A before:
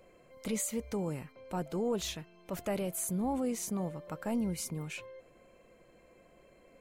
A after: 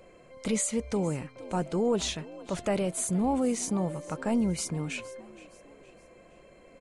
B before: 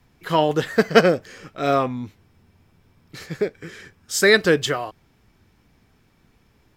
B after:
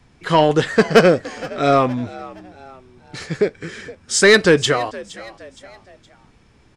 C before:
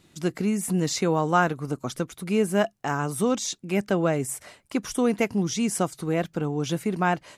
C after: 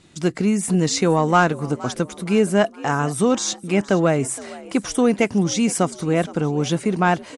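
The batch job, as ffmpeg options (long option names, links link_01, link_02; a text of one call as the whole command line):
ffmpeg -i in.wav -filter_complex "[0:a]aresample=22050,aresample=44100,acontrast=79,asplit=4[link_01][link_02][link_03][link_04];[link_02]adelay=467,afreqshift=63,volume=-19dB[link_05];[link_03]adelay=934,afreqshift=126,volume=-26.5dB[link_06];[link_04]adelay=1401,afreqshift=189,volume=-34.1dB[link_07];[link_01][link_05][link_06][link_07]amix=inputs=4:normalize=0,volume=-1dB" out.wav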